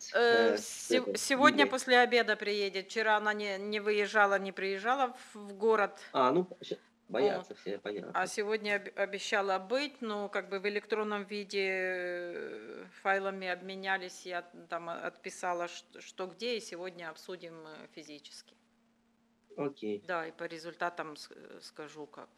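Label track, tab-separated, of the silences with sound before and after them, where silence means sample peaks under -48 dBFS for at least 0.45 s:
18.490000	19.520000	silence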